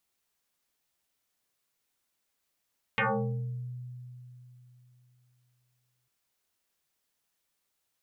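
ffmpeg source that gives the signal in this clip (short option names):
-f lavfi -i "aevalsrc='0.0708*pow(10,-3*t/3.34)*sin(2*PI*124*t+8.6*pow(10,-3*t/0.82)*sin(2*PI*2.69*124*t))':d=3.1:s=44100"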